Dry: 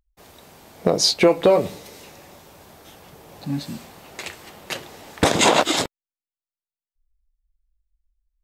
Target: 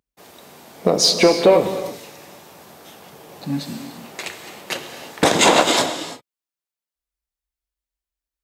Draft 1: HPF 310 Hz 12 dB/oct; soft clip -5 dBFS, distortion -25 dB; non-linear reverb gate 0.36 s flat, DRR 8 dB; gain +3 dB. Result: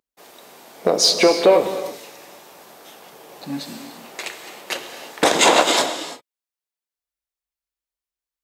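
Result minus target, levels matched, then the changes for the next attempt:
125 Hz band -9.0 dB
change: HPF 150 Hz 12 dB/oct

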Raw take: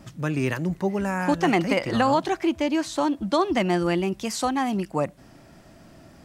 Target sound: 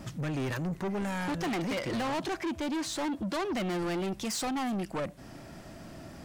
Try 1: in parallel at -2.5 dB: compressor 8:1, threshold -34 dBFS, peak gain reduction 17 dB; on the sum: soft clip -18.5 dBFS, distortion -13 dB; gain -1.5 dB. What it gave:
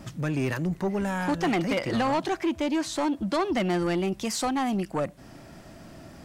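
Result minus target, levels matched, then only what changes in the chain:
soft clip: distortion -7 dB
change: soft clip -28 dBFS, distortion -6 dB

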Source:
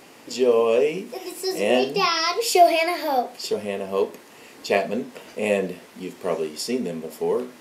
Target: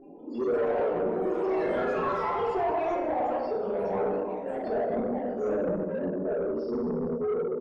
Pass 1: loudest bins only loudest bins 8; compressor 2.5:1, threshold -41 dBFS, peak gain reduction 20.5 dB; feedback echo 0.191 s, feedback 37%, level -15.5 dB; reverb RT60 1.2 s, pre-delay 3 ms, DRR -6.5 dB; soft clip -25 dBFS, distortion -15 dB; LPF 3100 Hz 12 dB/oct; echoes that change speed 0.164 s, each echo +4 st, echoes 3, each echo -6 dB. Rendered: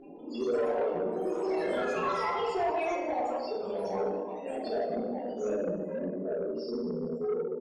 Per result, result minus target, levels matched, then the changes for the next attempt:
4000 Hz band +9.5 dB; compressor: peak gain reduction +6.5 dB
change: LPF 1300 Hz 12 dB/oct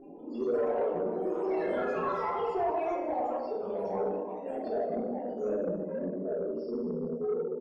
compressor: peak gain reduction +6.5 dB
change: compressor 2.5:1, threshold -30 dBFS, peak gain reduction 13.5 dB

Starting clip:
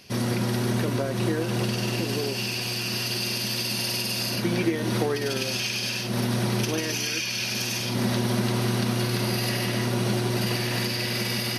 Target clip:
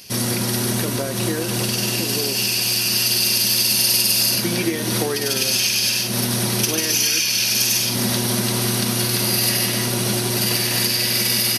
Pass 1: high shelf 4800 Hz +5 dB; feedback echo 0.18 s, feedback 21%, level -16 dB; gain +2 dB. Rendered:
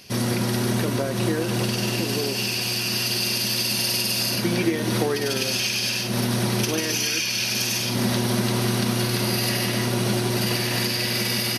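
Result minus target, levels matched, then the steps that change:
8000 Hz band -3.5 dB
change: high shelf 4800 Hz +16.5 dB

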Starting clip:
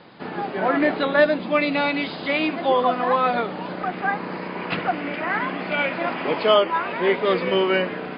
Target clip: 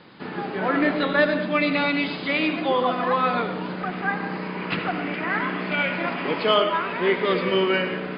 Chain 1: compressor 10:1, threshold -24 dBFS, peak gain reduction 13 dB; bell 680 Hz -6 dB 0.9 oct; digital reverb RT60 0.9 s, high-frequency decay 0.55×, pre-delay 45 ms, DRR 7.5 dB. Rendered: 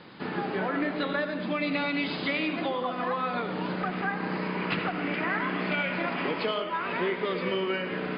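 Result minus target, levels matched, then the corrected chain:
compressor: peak gain reduction +13 dB
bell 680 Hz -6 dB 0.9 oct; digital reverb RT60 0.9 s, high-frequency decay 0.55×, pre-delay 45 ms, DRR 7.5 dB

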